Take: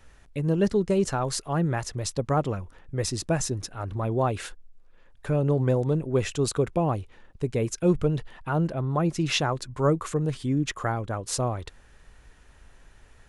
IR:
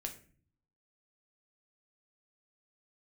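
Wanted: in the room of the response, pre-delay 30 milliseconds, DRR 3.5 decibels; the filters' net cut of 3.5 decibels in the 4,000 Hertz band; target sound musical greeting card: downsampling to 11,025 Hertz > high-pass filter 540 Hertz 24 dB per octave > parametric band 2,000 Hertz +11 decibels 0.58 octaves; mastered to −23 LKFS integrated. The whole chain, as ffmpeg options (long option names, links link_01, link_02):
-filter_complex "[0:a]equalizer=frequency=4000:width_type=o:gain=-6.5,asplit=2[link_01][link_02];[1:a]atrim=start_sample=2205,adelay=30[link_03];[link_02][link_03]afir=irnorm=-1:irlink=0,volume=-2dB[link_04];[link_01][link_04]amix=inputs=2:normalize=0,aresample=11025,aresample=44100,highpass=frequency=540:width=0.5412,highpass=frequency=540:width=1.3066,equalizer=frequency=2000:width_type=o:width=0.58:gain=11,volume=8dB"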